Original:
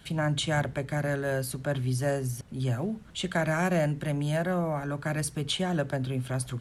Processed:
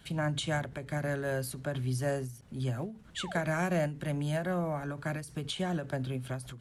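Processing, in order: painted sound fall, 3.16–3.39, 400–2000 Hz -39 dBFS; ending taper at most 120 dB/s; gain -3.5 dB

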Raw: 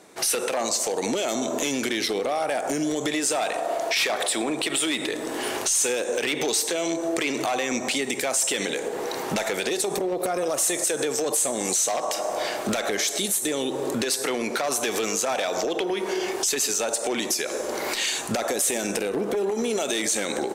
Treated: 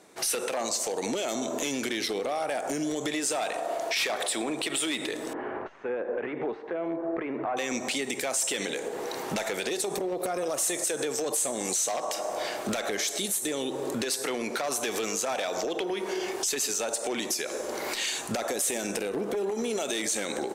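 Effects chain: 5.33–7.57 LPF 1700 Hz 24 dB/oct; gain -4.5 dB

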